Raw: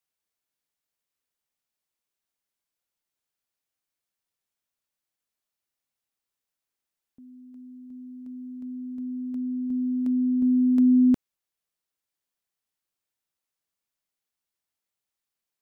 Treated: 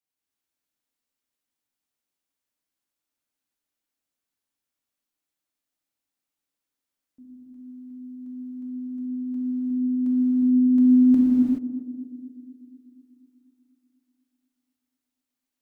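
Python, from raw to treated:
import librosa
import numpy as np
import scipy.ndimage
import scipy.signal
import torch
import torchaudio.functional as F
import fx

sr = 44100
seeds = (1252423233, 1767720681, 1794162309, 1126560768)

p1 = fx.peak_eq(x, sr, hz=280.0, db=7.5, octaves=0.44)
p2 = p1 + fx.echo_banded(p1, sr, ms=244, feedback_pct=64, hz=310.0, wet_db=-10.5, dry=0)
p3 = fx.rev_gated(p2, sr, seeds[0], gate_ms=450, shape='flat', drr_db=-7.0)
y = p3 * 10.0 ** (-7.5 / 20.0)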